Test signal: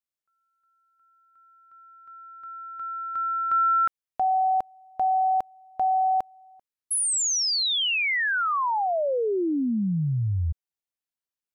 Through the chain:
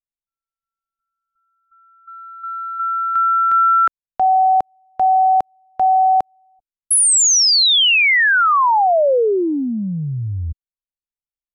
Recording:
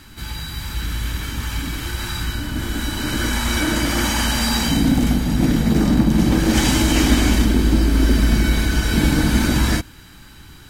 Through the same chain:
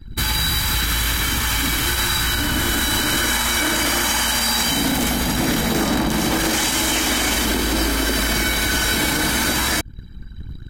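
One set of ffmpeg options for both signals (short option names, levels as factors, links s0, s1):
-filter_complex "[0:a]asplit=2[s0][s1];[s1]acompressor=threshold=0.0398:ratio=20:attack=79:release=175:knee=6:detection=rms,volume=1.12[s2];[s0][s2]amix=inputs=2:normalize=0,highshelf=f=7500:g=5.5,acrossover=split=430[s3][s4];[s3]acompressor=threshold=0.0355:ratio=8:attack=20:release=84:knee=2.83:detection=peak[s5];[s5][s4]amix=inputs=2:normalize=0,anlmdn=39.8,alimiter=level_in=5.96:limit=0.891:release=50:level=0:latency=1,volume=0.355"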